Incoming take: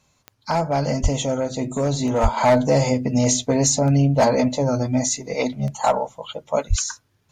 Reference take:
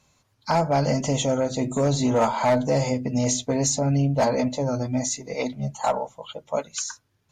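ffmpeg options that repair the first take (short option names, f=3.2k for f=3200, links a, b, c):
-filter_complex "[0:a]adeclick=t=4,asplit=3[a][b][c];[a]afade=t=out:st=1.02:d=0.02[d];[b]highpass=f=140:w=0.5412,highpass=f=140:w=1.3066,afade=t=in:st=1.02:d=0.02,afade=t=out:st=1.14:d=0.02[e];[c]afade=t=in:st=1.14:d=0.02[f];[d][e][f]amix=inputs=3:normalize=0,asplit=3[g][h][i];[g]afade=t=out:st=2.22:d=0.02[j];[h]highpass=f=140:w=0.5412,highpass=f=140:w=1.3066,afade=t=in:st=2.22:d=0.02,afade=t=out:st=2.34:d=0.02[k];[i]afade=t=in:st=2.34:d=0.02[l];[j][k][l]amix=inputs=3:normalize=0,asplit=3[m][n][o];[m]afade=t=out:st=6.69:d=0.02[p];[n]highpass=f=140:w=0.5412,highpass=f=140:w=1.3066,afade=t=in:st=6.69:d=0.02,afade=t=out:st=6.81:d=0.02[q];[o]afade=t=in:st=6.81:d=0.02[r];[p][q][r]amix=inputs=3:normalize=0,asetnsamples=n=441:p=0,asendcmd='2.37 volume volume -4.5dB',volume=0dB"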